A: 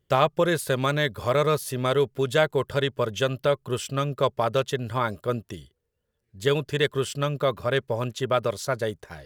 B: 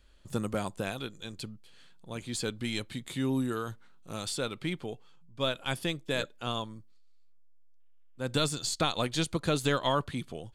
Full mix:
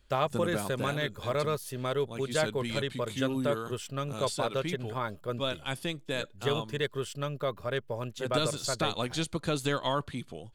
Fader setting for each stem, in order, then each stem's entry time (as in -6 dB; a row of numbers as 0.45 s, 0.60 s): -8.0 dB, -2.0 dB; 0.00 s, 0.00 s